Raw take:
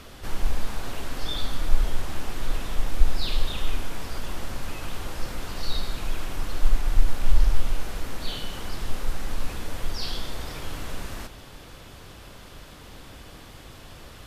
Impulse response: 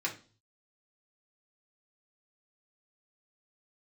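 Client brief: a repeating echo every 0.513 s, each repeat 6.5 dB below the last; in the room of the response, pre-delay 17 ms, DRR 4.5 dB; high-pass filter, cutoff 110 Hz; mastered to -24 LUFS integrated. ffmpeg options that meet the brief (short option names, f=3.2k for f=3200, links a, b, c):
-filter_complex "[0:a]highpass=110,aecho=1:1:513|1026|1539|2052|2565|3078:0.473|0.222|0.105|0.0491|0.0231|0.0109,asplit=2[a][b];[1:a]atrim=start_sample=2205,adelay=17[c];[b][c]afir=irnorm=-1:irlink=0,volume=-9.5dB[d];[a][d]amix=inputs=2:normalize=0,volume=11dB"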